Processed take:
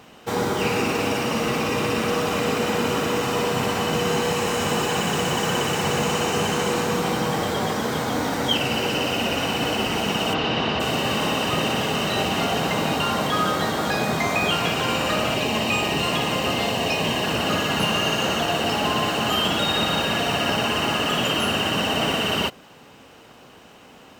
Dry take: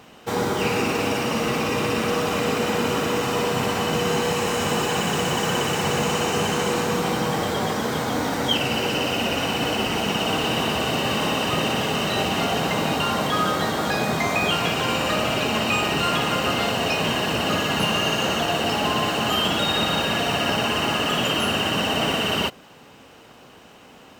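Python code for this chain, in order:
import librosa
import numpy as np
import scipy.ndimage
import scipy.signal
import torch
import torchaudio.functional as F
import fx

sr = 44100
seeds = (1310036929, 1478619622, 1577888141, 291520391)

y = fx.lowpass(x, sr, hz=5000.0, slope=24, at=(10.33, 10.79), fade=0.02)
y = fx.peak_eq(y, sr, hz=1400.0, db=-11.0, octaves=0.23, at=(15.34, 17.24))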